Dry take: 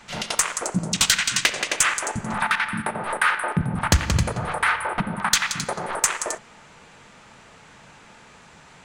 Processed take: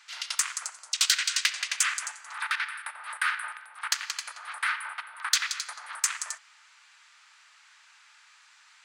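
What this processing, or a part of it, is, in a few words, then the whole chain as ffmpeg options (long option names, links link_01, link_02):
headphones lying on a table: -af "highpass=frequency=1200:width=0.5412,highpass=frequency=1200:width=1.3066,equalizer=frequency=4700:width_type=o:width=0.59:gain=5,volume=-6.5dB"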